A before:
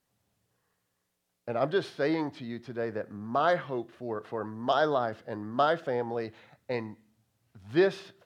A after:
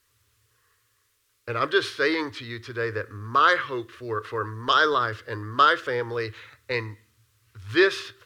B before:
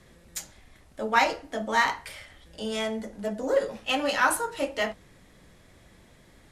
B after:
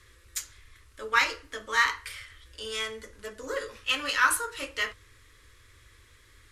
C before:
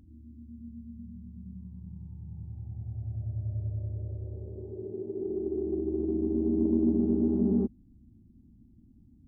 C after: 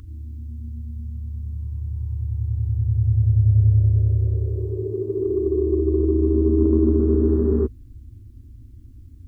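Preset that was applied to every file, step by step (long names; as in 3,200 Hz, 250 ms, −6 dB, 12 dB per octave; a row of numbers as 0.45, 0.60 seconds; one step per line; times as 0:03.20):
drawn EQ curve 110 Hz 0 dB, 170 Hz −28 dB, 270 Hz −12 dB, 450 Hz −5 dB, 740 Hz −23 dB, 1,100 Hz +1 dB
normalise the peak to −6 dBFS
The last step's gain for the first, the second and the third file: +11.0, +0.5, +18.0 decibels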